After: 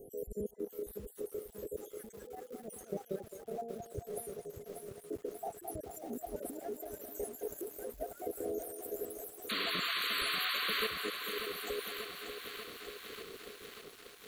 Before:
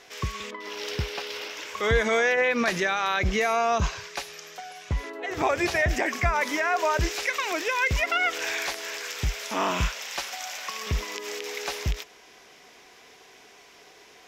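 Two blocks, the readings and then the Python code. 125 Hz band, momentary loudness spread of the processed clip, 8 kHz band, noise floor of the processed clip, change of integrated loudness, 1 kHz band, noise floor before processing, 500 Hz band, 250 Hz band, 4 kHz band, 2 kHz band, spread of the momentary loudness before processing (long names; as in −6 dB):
−21.5 dB, 15 LU, −12.5 dB, −57 dBFS, −13.0 dB, −16.5 dB, −53 dBFS, −11.0 dB, −11.5 dB, −6.0 dB, −15.0 dB, 11 LU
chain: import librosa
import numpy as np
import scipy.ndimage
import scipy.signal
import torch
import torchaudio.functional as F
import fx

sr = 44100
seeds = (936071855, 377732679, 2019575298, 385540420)

p1 = fx.spec_dropout(x, sr, seeds[0], share_pct=71)
p2 = scipy.signal.sosfilt(scipy.signal.ellip(3, 1.0, 40, [490.0, 9800.0], 'bandstop', fs=sr, output='sos'), p1)
p3 = fx.peak_eq(p2, sr, hz=1100.0, db=-15.0, octaves=0.37)
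p4 = fx.over_compress(p3, sr, threshold_db=-44.0, ratio=-1.0)
p5 = fx.spec_paint(p4, sr, seeds[1], shape='noise', start_s=9.49, length_s=1.38, low_hz=1000.0, high_hz=4600.0, level_db=-37.0)
p6 = p5 + fx.echo_banded(p5, sr, ms=215, feedback_pct=61, hz=1100.0, wet_db=-6, dry=0)
p7 = fx.echo_crushed(p6, sr, ms=589, feedback_pct=80, bits=9, wet_db=-8.0)
y = p7 * librosa.db_to_amplitude(1.0)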